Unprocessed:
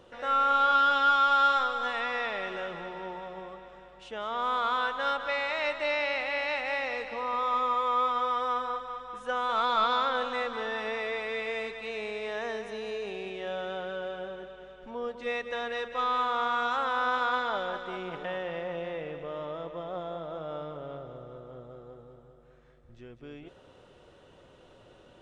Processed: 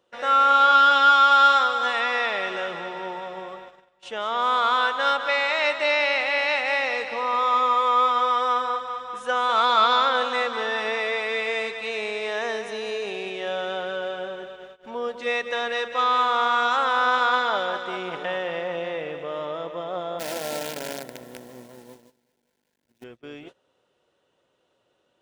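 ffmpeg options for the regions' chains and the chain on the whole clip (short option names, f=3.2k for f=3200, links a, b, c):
-filter_complex "[0:a]asettb=1/sr,asplit=3[a][b][c];[a]atrim=end=20.194[d];[b]atrim=start=20.19:end=23.04,asetpts=PTS-STARTPTS,afade=t=in:d=0.004:c=qsin,afade=t=out:st=2.846:d=0.004:c=qsin,acrusher=bits=7:dc=4:mix=0:aa=0.000001,asuperstop=centerf=1200:order=4:qfactor=4.1,equalizer=f=240:w=2.7:g=9[e];[c]atrim=start=23.036[f];[d][e]acrossfade=d=0.004:c1=hsin:c2=qsin[g];[g][f]acrossfade=d=0.004:c1=qsin:c2=hsin,highshelf=f=3.9k:g=5.5,agate=range=-20dB:threshold=-47dB:ratio=16:detection=peak,highpass=f=280:p=1,volume=7dB"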